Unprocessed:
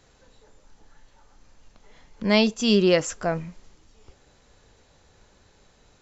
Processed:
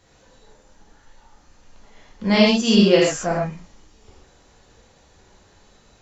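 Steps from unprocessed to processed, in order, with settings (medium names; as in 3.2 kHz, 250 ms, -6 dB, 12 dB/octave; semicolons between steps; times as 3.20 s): gated-style reverb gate 160 ms flat, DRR -5 dB; trim -1.5 dB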